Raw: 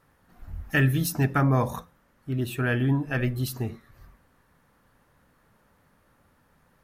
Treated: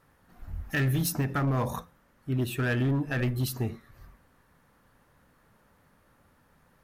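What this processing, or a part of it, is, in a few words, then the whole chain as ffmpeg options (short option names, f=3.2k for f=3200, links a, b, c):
limiter into clipper: -af "alimiter=limit=-17.5dB:level=0:latency=1:release=49,asoftclip=type=hard:threshold=-22dB"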